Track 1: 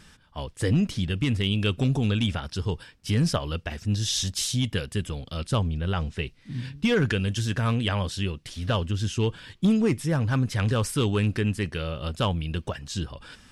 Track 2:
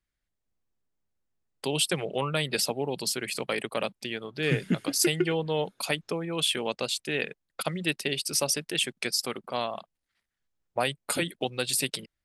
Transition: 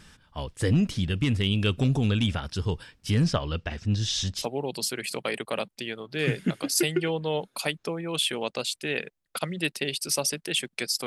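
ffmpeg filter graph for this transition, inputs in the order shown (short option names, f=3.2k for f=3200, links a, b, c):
-filter_complex "[0:a]asettb=1/sr,asplit=3[a][b][c];[a]atrim=end=3.244[d];[b]atrim=start=3.24:end=4.46,asetpts=PTS-STARTPTS,afade=t=in:d=0.004:c=qsin,afade=t=out:st=1.216:d=0.004:c=qsin,lowpass=5.9k[e];[c]atrim=start=4.456[f];[d][e]acrossfade=d=0.004:c1=hsin:c2=qsin[g];[g][f]acrossfade=d=0.004:c1=qsin:c2=hsin,apad=whole_dur=11.06,atrim=end=11.06,atrim=end=4.46,asetpts=PTS-STARTPTS[h];[1:a]atrim=start=2.6:end=9.3,asetpts=PTS-STARTPTS[i];[h][i]acrossfade=d=0.1:c1=tri:c2=tri"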